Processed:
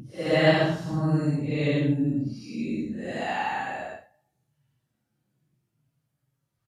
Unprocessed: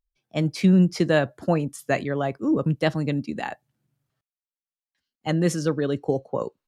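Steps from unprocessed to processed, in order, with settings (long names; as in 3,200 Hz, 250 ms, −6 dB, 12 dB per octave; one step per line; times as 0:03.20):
downsampling to 32,000 Hz
extreme stretch with random phases 5×, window 0.10 s, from 0:02.76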